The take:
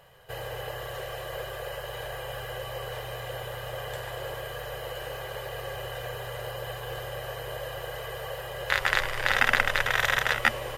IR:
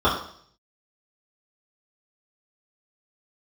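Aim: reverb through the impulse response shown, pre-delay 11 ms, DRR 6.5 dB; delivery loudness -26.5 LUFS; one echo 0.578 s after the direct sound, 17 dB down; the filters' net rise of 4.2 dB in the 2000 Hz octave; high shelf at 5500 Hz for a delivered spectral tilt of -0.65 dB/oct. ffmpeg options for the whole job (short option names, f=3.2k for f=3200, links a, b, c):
-filter_complex "[0:a]equalizer=f=2k:t=o:g=6,highshelf=f=5.5k:g=-8.5,aecho=1:1:578:0.141,asplit=2[a][b];[1:a]atrim=start_sample=2205,adelay=11[c];[b][c]afir=irnorm=-1:irlink=0,volume=-26.5dB[d];[a][d]amix=inputs=2:normalize=0,volume=0.5dB"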